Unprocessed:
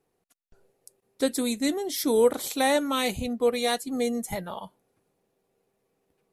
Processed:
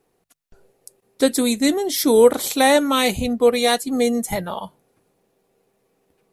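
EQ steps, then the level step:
mains-hum notches 50/100/150 Hz
+8.0 dB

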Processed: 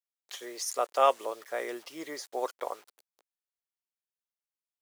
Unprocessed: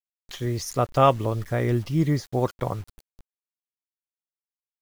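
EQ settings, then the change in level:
high-pass filter 450 Hz 24 dB per octave
dynamic equaliser 8,600 Hz, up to +7 dB, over −51 dBFS, Q 1
−4.5 dB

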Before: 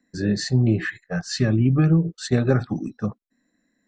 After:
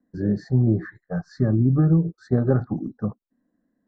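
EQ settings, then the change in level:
Butterworth band-reject 2,800 Hz, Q 0.65
high-frequency loss of the air 350 metres
0.0 dB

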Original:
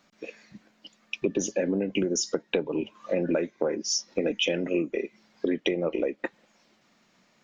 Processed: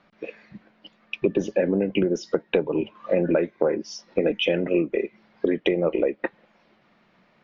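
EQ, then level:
high-frequency loss of the air 320 metres
parametric band 260 Hz −5 dB 0.44 octaves
+6.5 dB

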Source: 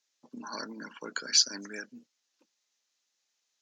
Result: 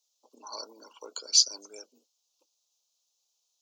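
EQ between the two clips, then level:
high-pass filter 420 Hz 24 dB per octave
Butterworth band-reject 1,800 Hz, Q 0.92
high-shelf EQ 8,700 Hz +10 dB
0.0 dB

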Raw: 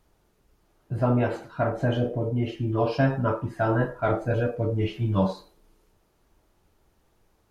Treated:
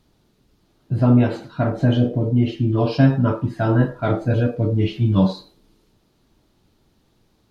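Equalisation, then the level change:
octave-band graphic EQ 125/250/4,000 Hz +7/+9/+10 dB
0.0 dB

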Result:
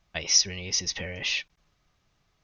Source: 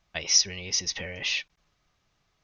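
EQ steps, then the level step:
low-shelf EQ 340 Hz +3.5 dB
0.0 dB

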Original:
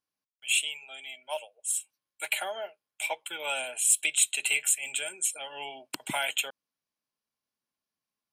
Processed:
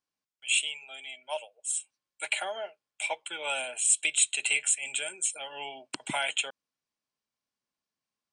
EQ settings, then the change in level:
Butterworth low-pass 9,400 Hz 72 dB per octave
0.0 dB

